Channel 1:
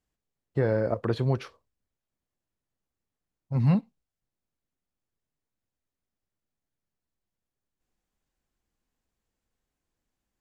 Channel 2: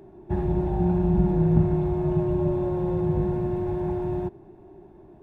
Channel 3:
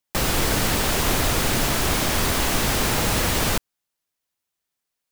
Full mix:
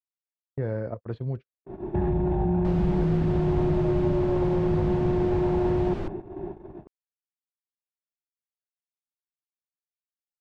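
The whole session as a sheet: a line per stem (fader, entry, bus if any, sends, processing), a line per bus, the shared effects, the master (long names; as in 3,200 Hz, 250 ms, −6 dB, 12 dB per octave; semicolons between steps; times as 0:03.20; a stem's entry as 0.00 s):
−17.5 dB, 0.00 s, bus A, no send, low-shelf EQ 180 Hz +7.5 dB; rotating-speaker cabinet horn 0.9 Hz
+2.5 dB, 1.65 s, bus A, no send, downward compressor, threshold −27 dBFS, peak gain reduction 12.5 dB
−15.5 dB, 2.50 s, no bus, no send, tilt shelving filter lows +7.5 dB, about 940 Hz
bus A: 0.0 dB, automatic gain control gain up to 11.5 dB; brickwall limiter −17.5 dBFS, peak gain reduction 11.5 dB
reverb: not used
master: noise gate −33 dBFS, range −48 dB; low-pass filter 3,200 Hz 12 dB per octave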